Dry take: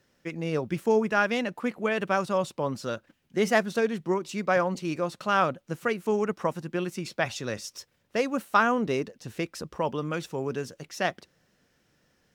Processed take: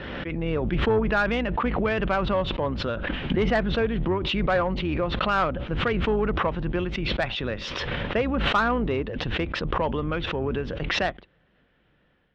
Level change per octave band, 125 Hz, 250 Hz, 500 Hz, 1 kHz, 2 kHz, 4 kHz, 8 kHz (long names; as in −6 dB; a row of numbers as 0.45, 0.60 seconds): +7.5 dB, +3.0 dB, +1.5 dB, +1.5 dB, +2.5 dB, +8.0 dB, can't be measured